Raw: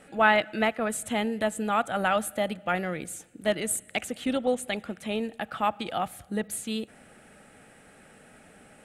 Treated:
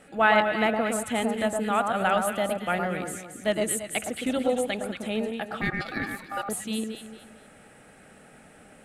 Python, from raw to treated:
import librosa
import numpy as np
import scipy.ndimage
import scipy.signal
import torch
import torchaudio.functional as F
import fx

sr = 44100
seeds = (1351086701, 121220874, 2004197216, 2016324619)

y = fx.echo_alternate(x, sr, ms=113, hz=1400.0, feedback_pct=58, wet_db=-3)
y = fx.ring_mod(y, sr, carrier_hz=1000.0, at=(5.61, 6.49))